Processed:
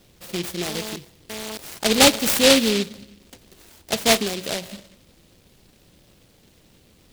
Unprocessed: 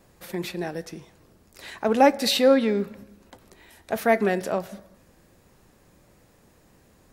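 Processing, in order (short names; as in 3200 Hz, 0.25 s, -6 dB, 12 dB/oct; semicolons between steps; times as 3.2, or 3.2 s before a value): 0.68–2.19 GSM buzz -35 dBFS; 4.18–4.62 compressor 6:1, threshold -25 dBFS, peak gain reduction 7.5 dB; noise-modulated delay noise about 3300 Hz, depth 0.24 ms; gain +2.5 dB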